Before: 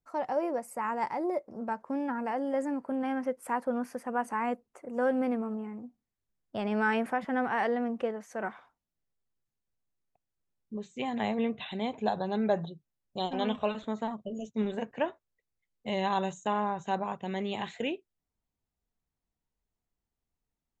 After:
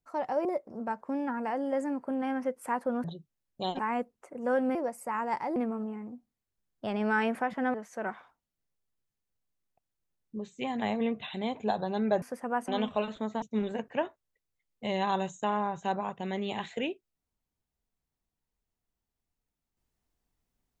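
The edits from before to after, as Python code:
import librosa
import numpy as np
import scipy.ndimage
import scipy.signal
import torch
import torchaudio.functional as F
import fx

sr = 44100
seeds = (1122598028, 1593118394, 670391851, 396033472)

y = fx.edit(x, sr, fx.move(start_s=0.45, length_s=0.81, to_s=5.27),
    fx.swap(start_s=3.85, length_s=0.46, other_s=12.6, other_length_s=0.75),
    fx.cut(start_s=7.45, length_s=0.67),
    fx.cut(start_s=14.09, length_s=0.36), tone=tone)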